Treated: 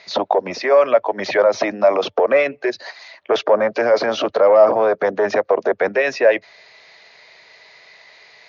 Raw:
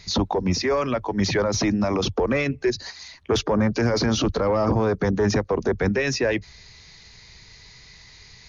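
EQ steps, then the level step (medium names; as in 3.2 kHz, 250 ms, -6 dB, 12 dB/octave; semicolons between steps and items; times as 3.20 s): resonant high-pass 620 Hz, resonance Q 4.7; low-pass 2.5 kHz 12 dB/octave; peaking EQ 790 Hz -7.5 dB 1.7 oct; +8.5 dB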